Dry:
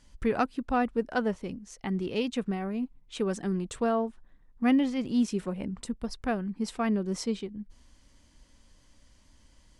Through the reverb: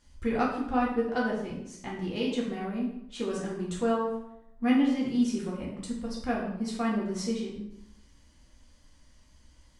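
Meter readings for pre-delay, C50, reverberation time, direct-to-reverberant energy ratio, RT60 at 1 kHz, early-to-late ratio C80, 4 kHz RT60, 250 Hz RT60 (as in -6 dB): 3 ms, 3.0 dB, 0.75 s, -4.5 dB, 0.75 s, 6.0 dB, 0.60 s, 0.85 s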